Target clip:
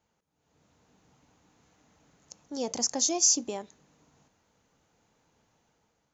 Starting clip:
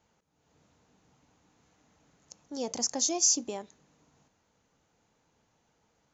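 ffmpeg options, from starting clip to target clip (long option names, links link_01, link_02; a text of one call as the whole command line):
ffmpeg -i in.wav -af "dynaudnorm=framelen=180:gausssize=7:maxgain=7dB,volume=-5dB" out.wav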